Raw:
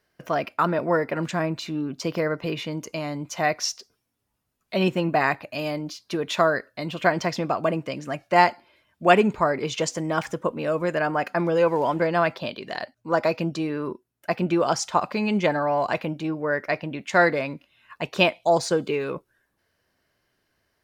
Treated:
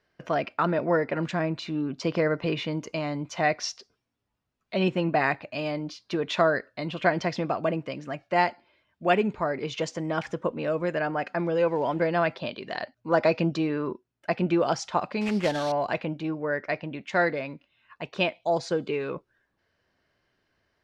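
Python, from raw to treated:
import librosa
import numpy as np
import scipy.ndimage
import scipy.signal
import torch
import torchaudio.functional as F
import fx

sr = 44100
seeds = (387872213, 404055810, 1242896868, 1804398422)

y = fx.sample_hold(x, sr, seeds[0], rate_hz=5000.0, jitter_pct=20, at=(15.21, 15.72))
y = fx.dynamic_eq(y, sr, hz=1100.0, q=2.1, threshold_db=-34.0, ratio=4.0, max_db=-4)
y = scipy.signal.sosfilt(scipy.signal.butter(2, 4700.0, 'lowpass', fs=sr, output='sos'), y)
y = fx.rider(y, sr, range_db=10, speed_s=2.0)
y = y * librosa.db_to_amplitude(-3.0)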